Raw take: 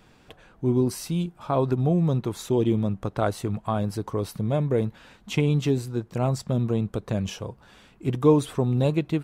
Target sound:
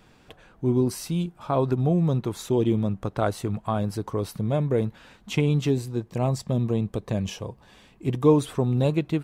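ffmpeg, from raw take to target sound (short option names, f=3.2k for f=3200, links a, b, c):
-filter_complex "[0:a]asettb=1/sr,asplit=3[a][b][c];[a]atrim=end=5.744[d];[b]atrim=start=5.74:end=8.29,asetpts=PTS-STARTPTS,afade=t=in:d=0.004:c=qsin,afade=t=out:st=2.546:d=0.004:c=qsin,bandreject=f=1.4k:w=5.6[e];[c]atrim=start=8.286[f];[d][e]acrossfade=d=0.004:c1=hsin:c2=qsin[g];[g][f]acrossfade=d=0.004:c1=qsin:c2=hsin"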